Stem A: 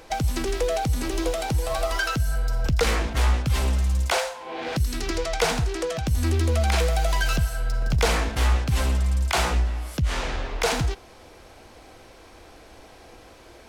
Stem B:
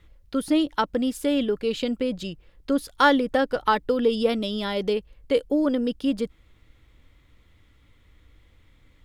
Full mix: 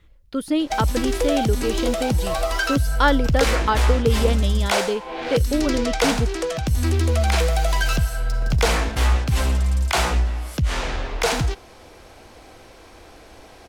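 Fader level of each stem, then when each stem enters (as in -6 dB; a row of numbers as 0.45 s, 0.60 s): +2.5 dB, 0.0 dB; 0.60 s, 0.00 s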